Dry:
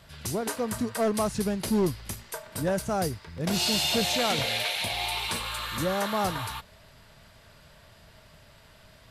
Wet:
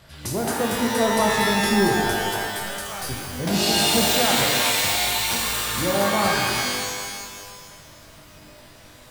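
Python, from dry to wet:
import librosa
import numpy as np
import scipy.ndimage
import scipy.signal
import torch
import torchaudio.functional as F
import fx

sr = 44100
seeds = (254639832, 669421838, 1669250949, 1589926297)

y = fx.tone_stack(x, sr, knobs='10-0-10', at=(2.51, 3.09))
y = fx.rev_shimmer(y, sr, seeds[0], rt60_s=1.7, semitones=12, shimmer_db=-2, drr_db=0.0)
y = y * librosa.db_to_amplitude(2.0)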